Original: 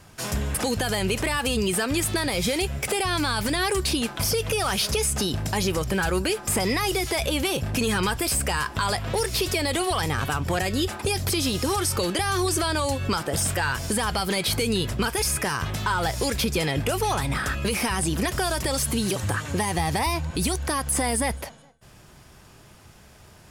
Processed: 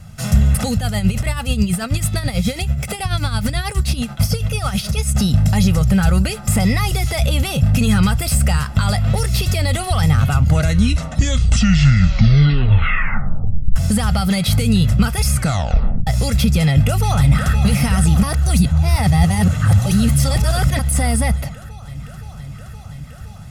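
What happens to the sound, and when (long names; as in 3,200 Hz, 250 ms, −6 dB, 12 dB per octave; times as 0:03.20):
0:00.75–0:05.15: amplitude tremolo 9.2 Hz, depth 66%
0:10.18: tape stop 3.58 s
0:15.33: tape stop 0.74 s
0:16.67–0:17.62: delay throw 520 ms, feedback 85%, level −10 dB
0:18.23–0:20.79: reverse
whole clip: low shelf with overshoot 270 Hz +10 dB, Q 1.5; comb filter 1.5 ms, depth 57%; level +1.5 dB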